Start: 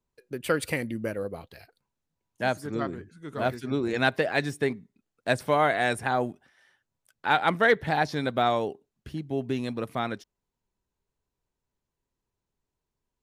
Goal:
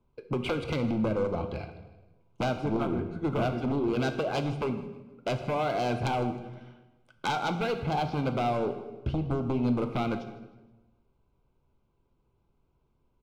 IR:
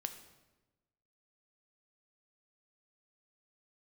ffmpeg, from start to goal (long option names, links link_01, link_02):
-filter_complex "[0:a]lowpass=2400,lowshelf=frequency=500:gain=5,acompressor=threshold=-32dB:ratio=16,aeval=exprs='0.0794*sin(PI/2*2.82*val(0)/0.0794)':channel_layout=same,aeval=exprs='0.0794*(cos(1*acos(clip(val(0)/0.0794,-1,1)))-cos(1*PI/2))+0.002*(cos(7*acos(clip(val(0)/0.0794,-1,1)))-cos(7*PI/2))':channel_layout=same,asuperstop=centerf=1800:order=4:qfactor=3.3,aecho=1:1:157|314|471:0.106|0.0371|0.013[link_01];[1:a]atrim=start_sample=2205[link_02];[link_01][link_02]afir=irnorm=-1:irlink=0"